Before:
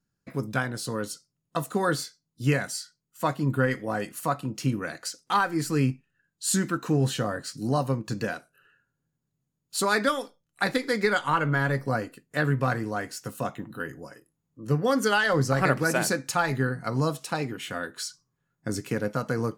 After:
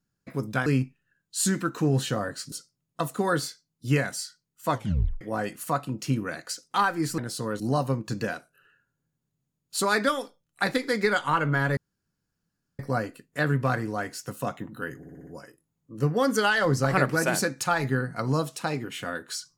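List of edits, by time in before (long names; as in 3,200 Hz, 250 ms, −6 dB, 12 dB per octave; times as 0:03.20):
0:00.66–0:01.08: swap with 0:05.74–0:07.60
0:03.27: tape stop 0.50 s
0:11.77: splice in room tone 1.02 s
0:13.95: stutter 0.06 s, 6 plays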